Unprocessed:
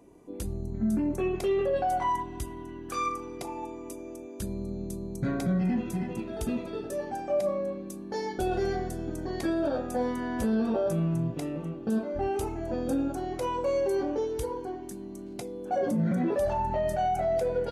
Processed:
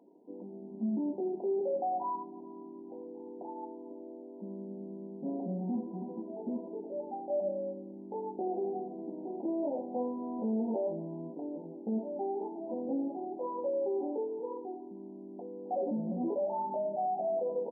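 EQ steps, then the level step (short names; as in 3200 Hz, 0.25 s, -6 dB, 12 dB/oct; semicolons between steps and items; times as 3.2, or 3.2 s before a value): brick-wall FIR band-pass 180–1000 Hz; -5.0 dB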